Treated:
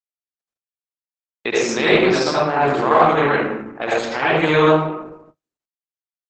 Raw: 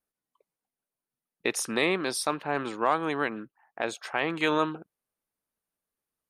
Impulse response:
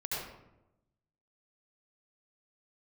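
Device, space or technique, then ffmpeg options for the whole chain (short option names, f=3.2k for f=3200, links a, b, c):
speakerphone in a meeting room: -filter_complex "[0:a]asettb=1/sr,asplit=3[a][b][c];[a]atrim=end=1.914[d];[b]atrim=start=1.91:end=2.76,asetpts=PTS-STARTPTS,afade=t=in:d=0.004:c=qsin,afade=t=out:st=0.846:d=0.004:c=qsin,adynamicequalizer=threshold=0.00501:dfrequency=650:dqfactor=5.3:tfrequency=650:tqfactor=5.3:attack=5:release=100:ratio=0.375:range=1.5:mode=boostabove:tftype=bell[e];[c]atrim=start=2.756[f];[d][e]acrossfade=d=0.004:c1=hsin:c2=qsin[g];[g][f]acrossfade=d=0.004:c1=qsin:c2=hsin[h];[1:a]atrim=start_sample=2205[i];[h][i]afir=irnorm=-1:irlink=0,asplit=2[j][k];[k]adelay=100,highpass=300,lowpass=3.4k,asoftclip=type=hard:threshold=-18dB,volume=-21dB[l];[j][l]amix=inputs=2:normalize=0,dynaudnorm=f=230:g=7:m=9dB,agate=range=-40dB:threshold=-45dB:ratio=16:detection=peak,volume=1dB" -ar 48000 -c:a libopus -b:a 12k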